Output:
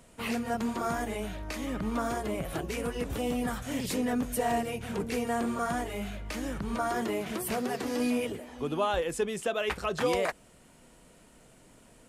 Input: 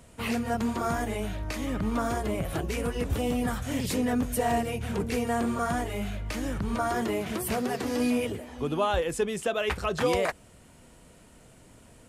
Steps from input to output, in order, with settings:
parametric band 83 Hz −9.5 dB 1 octave
level −2 dB

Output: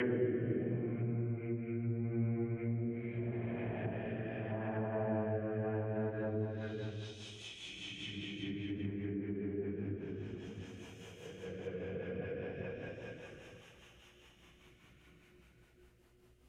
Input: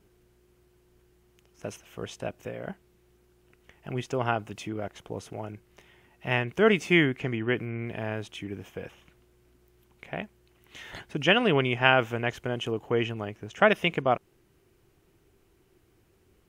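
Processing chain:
extreme stretch with random phases 9.7×, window 0.25 s, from 0:07.54
rotating-speaker cabinet horn 0.75 Hz, later 5 Hz, at 0:05.28
treble cut that deepens with the level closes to 980 Hz, closed at −31 dBFS
level −2 dB

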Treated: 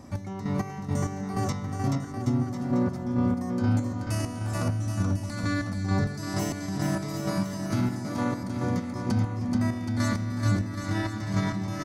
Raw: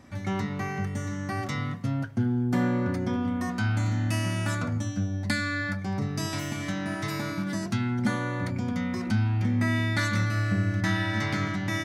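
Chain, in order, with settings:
flat-topped bell 2,300 Hz −8.5 dB
brickwall limiter −25 dBFS, peak gain reduction 9.5 dB
square-wave tremolo 2.2 Hz, depth 65%, duty 35%
bouncing-ball delay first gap 430 ms, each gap 0.8×, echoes 5
level +6 dB

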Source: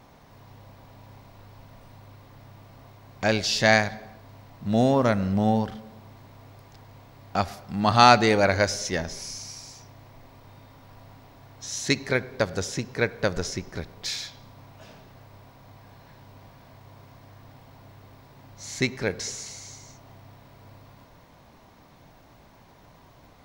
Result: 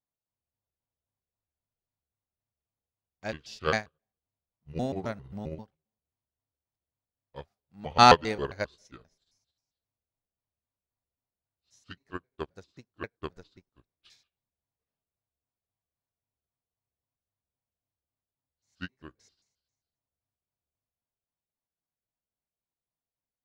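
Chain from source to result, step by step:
pitch shifter gated in a rhythm −6 semitones, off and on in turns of 133 ms
expander for the loud parts 2.5 to 1, over −43 dBFS

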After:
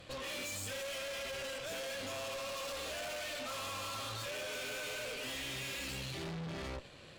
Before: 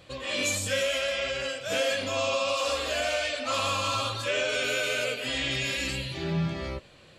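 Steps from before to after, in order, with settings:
downward compressor 2.5 to 1, threshold −30 dBFS, peak gain reduction 5.5 dB
tube saturation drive 43 dB, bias 0.7
level +3 dB

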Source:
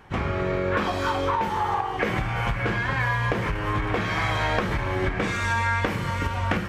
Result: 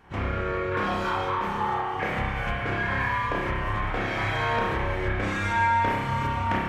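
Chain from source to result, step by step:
spring reverb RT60 1 s, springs 30 ms, chirp 50 ms, DRR −4 dB
level −6.5 dB

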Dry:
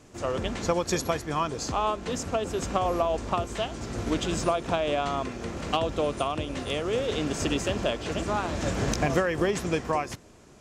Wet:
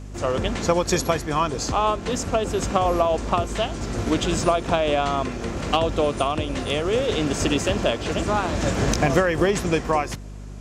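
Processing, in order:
mains hum 50 Hz, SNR 14 dB
level +5.5 dB

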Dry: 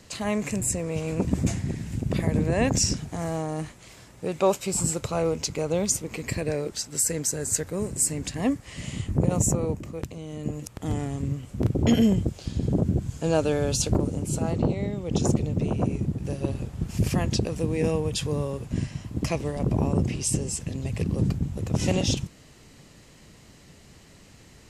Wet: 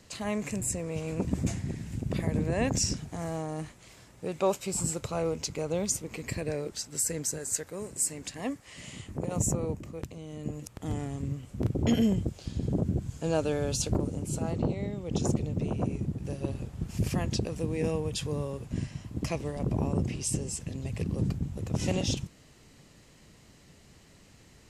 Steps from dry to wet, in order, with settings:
0:07.38–0:09.36: low-shelf EQ 240 Hz −11 dB
level −5 dB

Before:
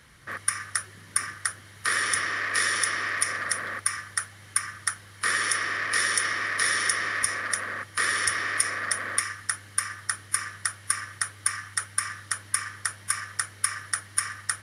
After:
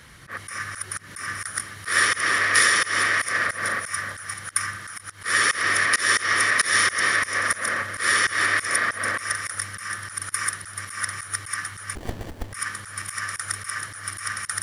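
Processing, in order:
feedback delay that plays each chunk backwards 217 ms, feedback 43%, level −8 dB
volume swells 141 ms
0:11.95–0:12.53: windowed peak hold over 33 samples
level +7 dB

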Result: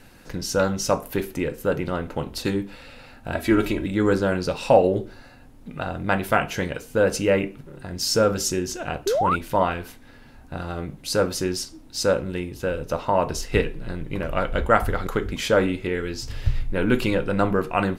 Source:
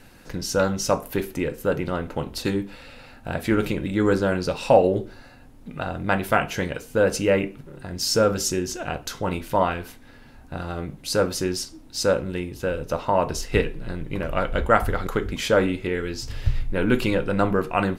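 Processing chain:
0:03.32–0:03.86: comb filter 3.1 ms
0:09.06–0:09.36: sound drawn into the spectrogram rise 360–1,500 Hz −21 dBFS

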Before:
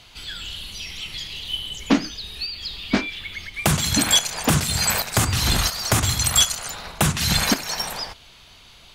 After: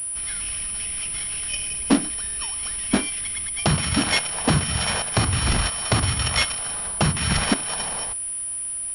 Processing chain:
samples sorted by size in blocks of 8 samples
switching amplifier with a slow clock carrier 9,800 Hz

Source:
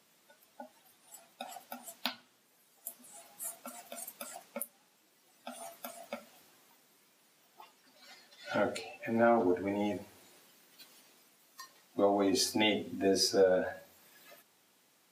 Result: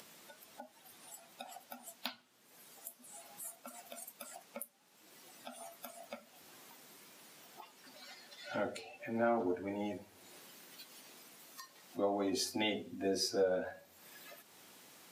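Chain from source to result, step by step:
upward compression, threshold −38 dBFS
level −6 dB

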